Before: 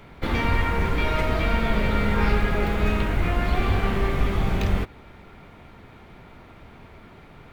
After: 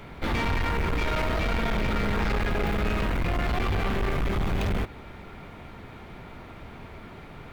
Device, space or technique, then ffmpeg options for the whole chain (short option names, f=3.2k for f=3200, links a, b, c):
saturation between pre-emphasis and de-emphasis: -af "highshelf=f=4.6k:g=9.5,asoftclip=type=tanh:threshold=-26dB,highshelf=f=4.6k:g=-9.5,volume=3.5dB"